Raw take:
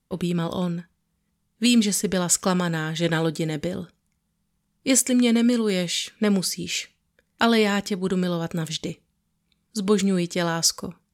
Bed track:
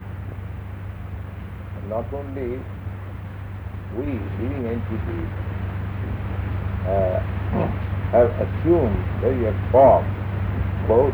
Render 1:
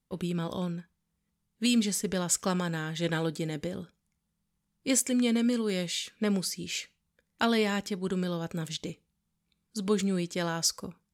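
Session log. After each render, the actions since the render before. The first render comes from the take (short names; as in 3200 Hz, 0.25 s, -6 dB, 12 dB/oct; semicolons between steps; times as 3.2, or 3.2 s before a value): gain -7 dB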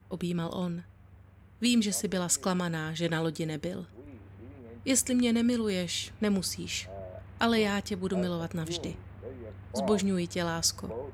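add bed track -22 dB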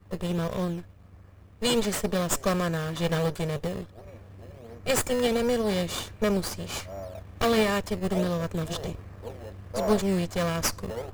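minimum comb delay 1.7 ms; in parallel at -3.5 dB: decimation with a swept rate 13×, swing 100% 1.4 Hz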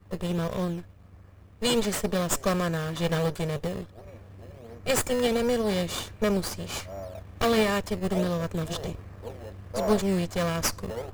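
nothing audible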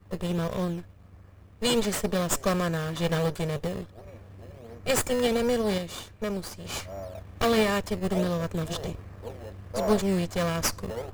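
5.78–6.65 gain -6 dB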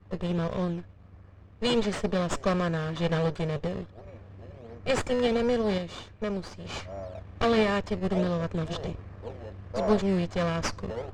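air absorption 120 m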